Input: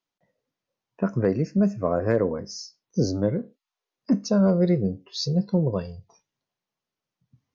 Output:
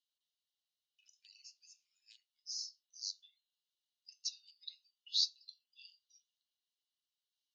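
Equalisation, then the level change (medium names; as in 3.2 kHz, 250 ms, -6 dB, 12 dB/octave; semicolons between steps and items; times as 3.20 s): rippled Chebyshev high-pass 2.8 kHz, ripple 6 dB; low-pass 5.6 kHz 12 dB/octave; +4.0 dB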